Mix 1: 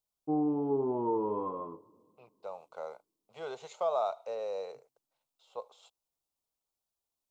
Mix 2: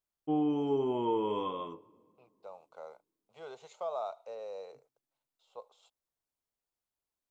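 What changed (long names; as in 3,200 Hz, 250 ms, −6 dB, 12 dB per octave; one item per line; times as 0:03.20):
first voice: remove low-pass filter 1,300 Hz 24 dB per octave
second voice −6.0 dB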